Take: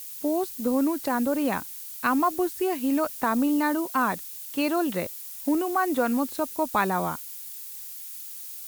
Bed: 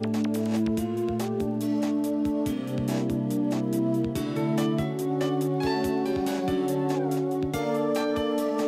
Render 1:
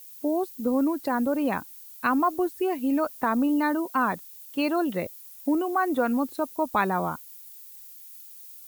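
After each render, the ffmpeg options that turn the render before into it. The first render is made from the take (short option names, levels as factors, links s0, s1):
-af "afftdn=nr=10:nf=-39"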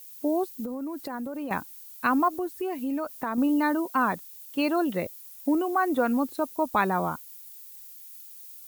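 -filter_complex "[0:a]asettb=1/sr,asplit=3[s0][s1][s2];[s0]atrim=end=0.644[s3];[s1]atrim=start=0.64:end=1.51,asetpts=PTS-STARTPTS,afade=t=in:d=0.004:c=qsin,afade=t=out:st=0.866:d=0.004:c=qsin,acompressor=threshold=0.0316:ratio=12:attack=3.2:release=140:knee=1:detection=peak[s4];[s2]atrim=start=1.506[s5];[s3][s4]acrossfade=d=0.004:c1=hsin:c2=qsin[s6];[s6][s5]acrossfade=d=0.004:c1=qsin:c2=hsin,asettb=1/sr,asplit=3[s7][s8][s9];[s7]atrim=end=2.284[s10];[s8]atrim=start=2.28:end=3.38,asetpts=PTS-STARTPTS,afade=t=in:d=0.004:c=qsin,afade=t=out:st=1.096:d=0.004:c=qsin,acompressor=threshold=0.0316:ratio=2:attack=3.2:release=140:knee=1:detection=peak[s11];[s9]atrim=start=3.376[s12];[s10][s11]acrossfade=d=0.004:c1=hsin:c2=qsin[s13];[s13][s12]acrossfade=d=0.004:c1=qsin:c2=hsin"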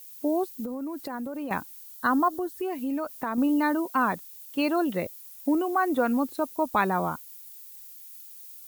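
-filter_complex "[0:a]asettb=1/sr,asplit=3[s0][s1][s2];[s0]atrim=end=1.954[s3];[s1]atrim=start=1.95:end=2.56,asetpts=PTS-STARTPTS,afade=t=in:d=0.004:c=qsin,afade=t=out:st=0.606:d=0.004:c=qsin,asuperstop=centerf=2400:order=12:qfactor=2.7[s4];[s2]atrim=start=2.556[s5];[s3][s4]acrossfade=d=0.004:c1=hsin:c2=qsin[s6];[s6][s5]acrossfade=d=0.004:c1=qsin:c2=hsin"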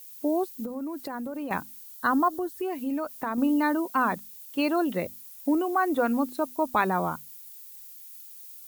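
-af "bandreject=f=50:t=h:w=6,bandreject=f=100:t=h:w=6,bandreject=f=150:t=h:w=6,bandreject=f=200:t=h:w=6,bandreject=f=250:t=h:w=6"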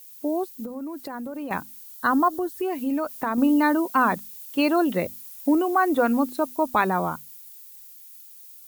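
-af "dynaudnorm=f=240:g=17:m=1.68"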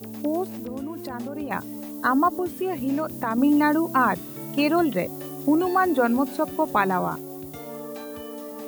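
-filter_complex "[1:a]volume=0.299[s0];[0:a][s0]amix=inputs=2:normalize=0"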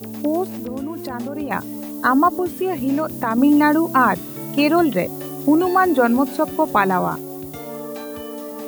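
-af "volume=1.78,alimiter=limit=0.794:level=0:latency=1"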